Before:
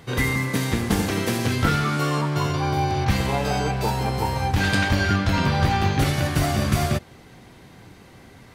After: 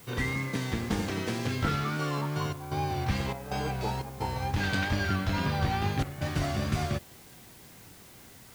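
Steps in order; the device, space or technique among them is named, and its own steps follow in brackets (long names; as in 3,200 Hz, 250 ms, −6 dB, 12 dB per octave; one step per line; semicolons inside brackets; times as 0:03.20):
worn cassette (low-pass filter 7,200 Hz 12 dB per octave; tape wow and flutter; tape dropouts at 0:02.53/0:03.33/0:04.02/0:06.03, 182 ms −9 dB; white noise bed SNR 23 dB)
level −8 dB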